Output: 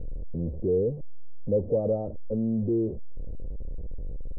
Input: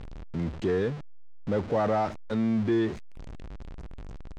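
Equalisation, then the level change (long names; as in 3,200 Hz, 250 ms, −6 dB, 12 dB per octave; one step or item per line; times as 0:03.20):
transistor ladder low-pass 560 Hz, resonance 70%
spectral tilt −4 dB per octave
0.0 dB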